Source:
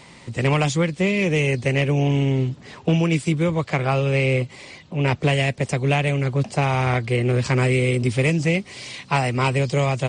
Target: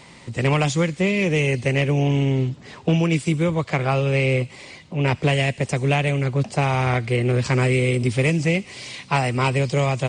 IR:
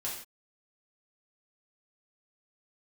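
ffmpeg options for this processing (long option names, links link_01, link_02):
-filter_complex "[0:a]asplit=2[link_01][link_02];[link_02]aderivative[link_03];[1:a]atrim=start_sample=2205,adelay=66[link_04];[link_03][link_04]afir=irnorm=-1:irlink=0,volume=-14.5dB[link_05];[link_01][link_05]amix=inputs=2:normalize=0"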